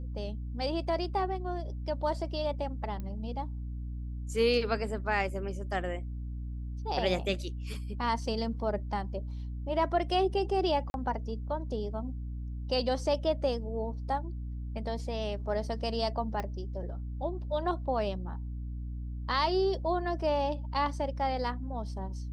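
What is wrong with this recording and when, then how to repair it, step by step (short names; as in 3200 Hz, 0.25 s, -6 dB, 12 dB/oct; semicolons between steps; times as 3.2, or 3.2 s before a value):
hum 60 Hz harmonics 5 -37 dBFS
3 pop -27 dBFS
10.9–10.94 gap 41 ms
16.4 pop -21 dBFS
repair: de-click; de-hum 60 Hz, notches 5; interpolate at 10.9, 41 ms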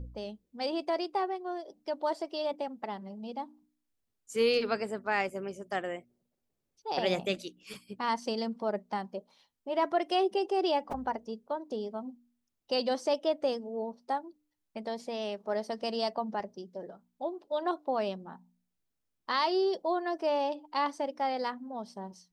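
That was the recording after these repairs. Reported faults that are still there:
16.4 pop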